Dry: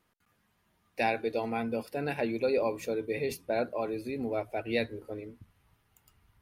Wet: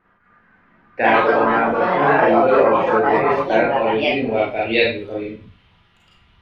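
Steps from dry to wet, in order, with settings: Schroeder reverb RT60 0.34 s, combs from 32 ms, DRR -4.5 dB; ever faster or slower copies 255 ms, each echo +4 st, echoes 3; low-pass sweep 1.6 kHz -> 3.3 kHz, 3.18–4.64 s; trim +7 dB

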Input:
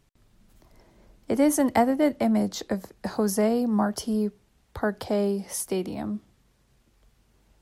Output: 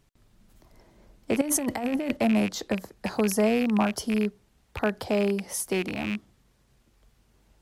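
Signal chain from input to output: rattle on loud lows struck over -33 dBFS, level -21 dBFS; 1.41–2.17 s: compressor with a negative ratio -28 dBFS, ratio -1

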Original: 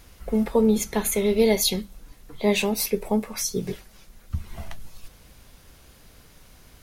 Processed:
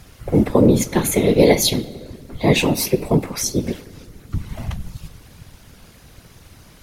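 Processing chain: reverberation RT60 2.0 s, pre-delay 4 ms, DRR 14.5 dB; whisper effect; treble shelf 12 kHz -5 dB; trim +5.5 dB

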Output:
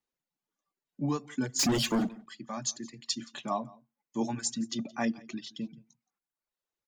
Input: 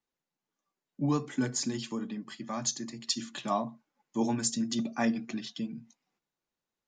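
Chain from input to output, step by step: 1.59–2.09 s: waveshaping leveller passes 5; reverb removal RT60 0.95 s; delay 171 ms -23 dB; trim -1.5 dB

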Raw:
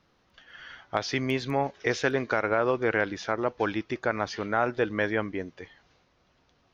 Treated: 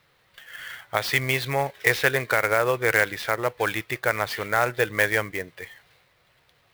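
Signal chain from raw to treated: graphic EQ 125/250/500/1000/2000/4000 Hz +10/-7/+7/+3/+12/+10 dB; sampling jitter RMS 0.02 ms; trim -4 dB

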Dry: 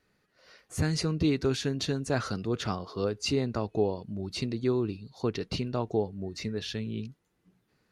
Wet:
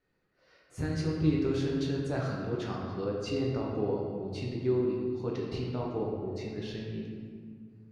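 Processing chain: treble shelf 4.3 kHz -9.5 dB; reverberation RT60 2.1 s, pre-delay 7 ms, DRR -3 dB; trim -8 dB

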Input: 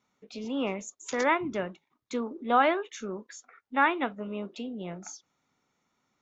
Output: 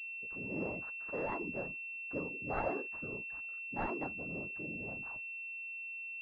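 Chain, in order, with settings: one-sided wavefolder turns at -20 dBFS; whisper effect; class-D stage that switches slowly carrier 2.7 kHz; trim -9 dB

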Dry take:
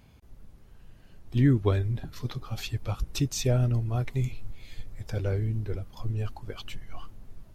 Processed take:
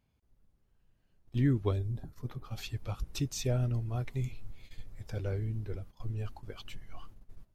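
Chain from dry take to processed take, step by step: 1.71–2.43 s: peaking EQ 1.4 kHz -> 5.5 kHz -13 dB 1.5 oct; gate -40 dBFS, range -13 dB; trim -6 dB

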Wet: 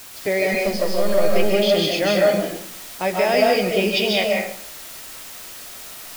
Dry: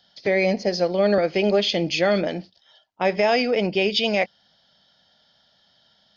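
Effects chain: 0.53–1.25 s: partial rectifier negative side -7 dB; flange 0.34 Hz, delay 5.8 ms, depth 6.6 ms, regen -73%; added noise white -43 dBFS; reverberation RT60 0.55 s, pre-delay 105 ms, DRR -1.5 dB; trim +3 dB

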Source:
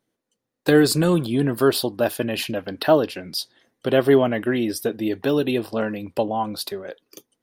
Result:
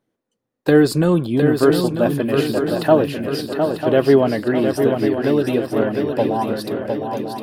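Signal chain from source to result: treble shelf 2.3 kHz -9.5 dB; on a send: shuffle delay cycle 945 ms, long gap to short 3:1, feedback 51%, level -6 dB; on the sum: trim +3 dB

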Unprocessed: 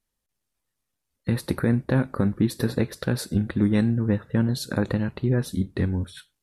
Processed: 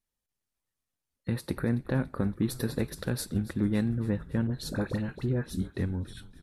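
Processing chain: 2.36–3.26 s: treble shelf 7.2 kHz +8 dB; 4.47–5.77 s: phase dispersion highs, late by 51 ms, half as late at 1.2 kHz; frequency-shifting echo 282 ms, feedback 61%, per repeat -71 Hz, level -17.5 dB; trim -6.5 dB

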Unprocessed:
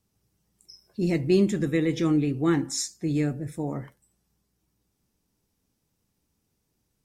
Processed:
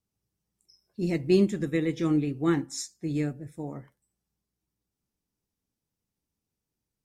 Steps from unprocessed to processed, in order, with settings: upward expansion 1.5:1, over -39 dBFS

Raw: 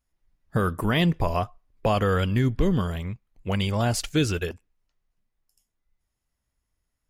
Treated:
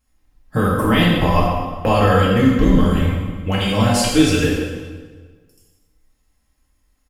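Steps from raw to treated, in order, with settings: in parallel at +2.5 dB: compression, threshold -30 dBFS, peak gain reduction 12.5 dB; on the sum: comb 3.8 ms, depth 54%; reverberation RT60 1.4 s, pre-delay 3 ms, DRR -5 dB; trim -1 dB

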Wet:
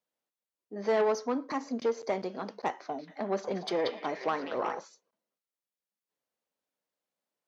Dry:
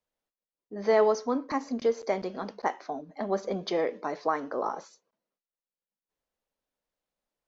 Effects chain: valve stage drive 21 dB, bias 0.4; high-pass 150 Hz 12 dB/octave; 2.71–4.79 s: repeats whose band climbs or falls 183 ms, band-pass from 3.4 kHz, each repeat -0.7 oct, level -0.5 dB

